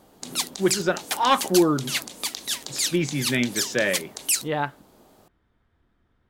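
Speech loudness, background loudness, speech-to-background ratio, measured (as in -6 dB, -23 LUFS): -24.5 LUFS, -27.5 LUFS, 3.0 dB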